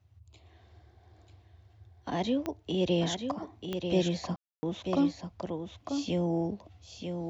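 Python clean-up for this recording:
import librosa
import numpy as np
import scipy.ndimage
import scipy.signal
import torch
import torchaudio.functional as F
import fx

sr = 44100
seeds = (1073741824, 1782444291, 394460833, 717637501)

y = fx.fix_declick_ar(x, sr, threshold=10.0)
y = fx.fix_ambience(y, sr, seeds[0], print_start_s=0.0, print_end_s=0.5, start_s=4.36, end_s=4.63)
y = fx.noise_reduce(y, sr, print_start_s=0.0, print_end_s=0.5, reduce_db=15.0)
y = fx.fix_echo_inverse(y, sr, delay_ms=940, level_db=-6.5)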